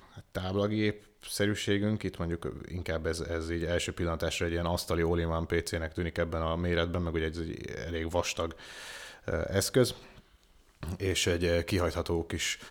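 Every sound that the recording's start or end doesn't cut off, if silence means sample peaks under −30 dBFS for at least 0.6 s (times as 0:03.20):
0:09.28–0:09.91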